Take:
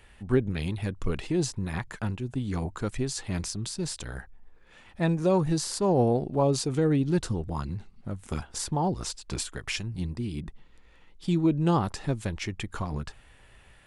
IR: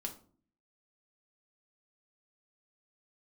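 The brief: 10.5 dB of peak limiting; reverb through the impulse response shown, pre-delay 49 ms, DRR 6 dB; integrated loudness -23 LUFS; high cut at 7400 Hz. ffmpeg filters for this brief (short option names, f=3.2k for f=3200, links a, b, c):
-filter_complex "[0:a]lowpass=7.4k,alimiter=limit=-22.5dB:level=0:latency=1,asplit=2[a][b];[1:a]atrim=start_sample=2205,adelay=49[c];[b][c]afir=irnorm=-1:irlink=0,volume=-4.5dB[d];[a][d]amix=inputs=2:normalize=0,volume=9dB"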